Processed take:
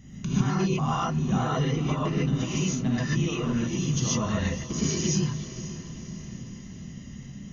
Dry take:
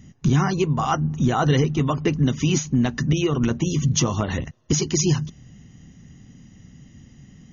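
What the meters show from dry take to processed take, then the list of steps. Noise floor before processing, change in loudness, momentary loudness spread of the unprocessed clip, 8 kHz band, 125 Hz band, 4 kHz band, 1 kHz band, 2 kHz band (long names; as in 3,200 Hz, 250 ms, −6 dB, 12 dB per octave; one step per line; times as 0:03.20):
−50 dBFS, −5.0 dB, 5 LU, can't be measured, −5.0 dB, −4.5 dB, −5.0 dB, −4.5 dB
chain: downward compressor 6 to 1, threshold −28 dBFS, peak gain reduction 13.5 dB
on a send: feedback delay with all-pass diffusion 528 ms, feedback 51%, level −13 dB
on the sum: reverb whose tail is shaped and stops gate 170 ms rising, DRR −7 dB
level −3 dB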